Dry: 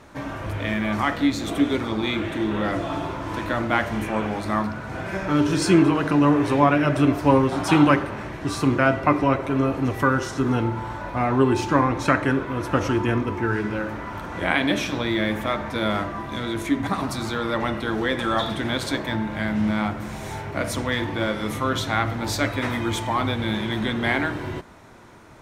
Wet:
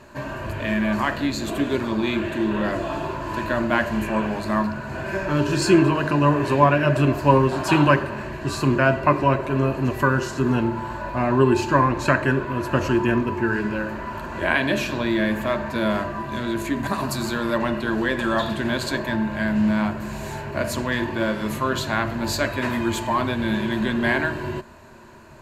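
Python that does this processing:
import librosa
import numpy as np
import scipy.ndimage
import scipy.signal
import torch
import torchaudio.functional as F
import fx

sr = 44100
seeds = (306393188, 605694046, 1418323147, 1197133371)

y = fx.high_shelf(x, sr, hz=7800.0, db=7.5, at=(16.76, 17.58))
y = fx.ripple_eq(y, sr, per_octave=1.4, db=9)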